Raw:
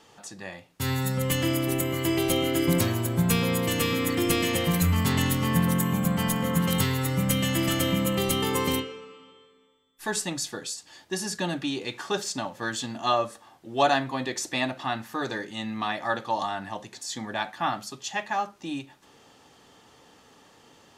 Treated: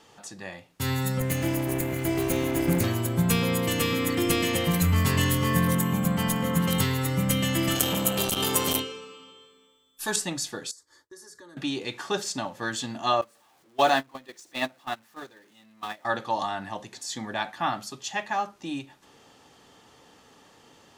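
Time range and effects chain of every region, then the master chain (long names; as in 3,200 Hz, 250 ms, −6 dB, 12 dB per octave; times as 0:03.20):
0:01.20–0:02.84: lower of the sound and its delayed copy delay 0.45 ms + parametric band 4,000 Hz −7.5 dB 1.2 octaves
0:04.91–0:05.75: centre clipping without the shift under −44 dBFS + double-tracking delay 21 ms −4.5 dB
0:07.75–0:10.16: high-shelf EQ 3,000 Hz +11.5 dB + notch filter 2,000 Hz, Q 5.4 + saturating transformer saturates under 3,000 Hz
0:10.71–0:11.57: downward expander −46 dBFS + downward compressor 2.5 to 1, threshold −49 dBFS + phaser with its sweep stopped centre 730 Hz, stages 6
0:13.21–0:16.05: converter with a step at zero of −31.5 dBFS + high-pass filter 210 Hz 6 dB per octave + noise gate −26 dBFS, range −25 dB
whole clip: no processing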